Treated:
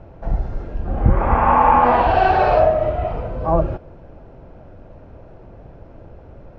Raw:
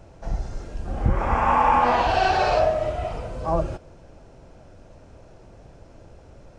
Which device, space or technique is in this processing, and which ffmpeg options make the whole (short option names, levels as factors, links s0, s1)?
phone in a pocket: -af "lowpass=3700,highshelf=f=2500:g=-11,highshelf=f=5600:g=-4,volume=2.11"